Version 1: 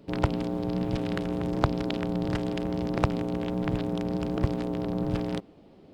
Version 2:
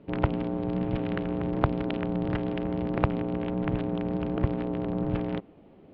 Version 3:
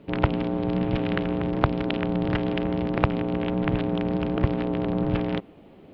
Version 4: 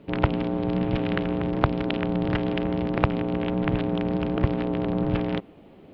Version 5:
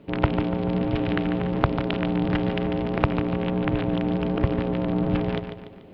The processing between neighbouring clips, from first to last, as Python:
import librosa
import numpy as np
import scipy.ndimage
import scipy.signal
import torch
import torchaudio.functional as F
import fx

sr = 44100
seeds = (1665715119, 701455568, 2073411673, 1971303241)

y1 = scipy.signal.sosfilt(scipy.signal.butter(4, 3000.0, 'lowpass', fs=sr, output='sos'), x)
y2 = fx.high_shelf(y1, sr, hz=2200.0, db=8.0)
y2 = fx.rider(y2, sr, range_db=10, speed_s=0.5)
y2 = F.gain(torch.from_numpy(y2), 3.5).numpy()
y3 = y2
y4 = fx.echo_feedback(y3, sr, ms=145, feedback_pct=45, wet_db=-8.5)